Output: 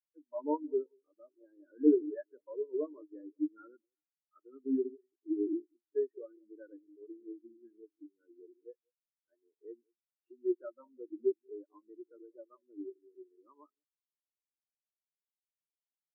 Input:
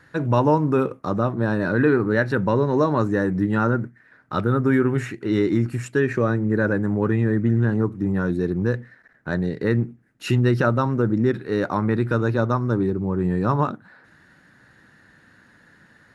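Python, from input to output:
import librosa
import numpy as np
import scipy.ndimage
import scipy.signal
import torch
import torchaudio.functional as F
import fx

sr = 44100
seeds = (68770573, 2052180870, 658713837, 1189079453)

y = scipy.signal.sosfilt(scipy.signal.ellip(3, 1.0, 40, [290.0, 4200.0], 'bandpass', fs=sr, output='sos'), x)
y = fx.echo_alternate(y, sr, ms=185, hz=850.0, feedback_pct=57, wet_db=-9.5)
y = fx.spectral_expand(y, sr, expansion=4.0)
y = F.gain(torch.from_numpy(y), -7.0).numpy()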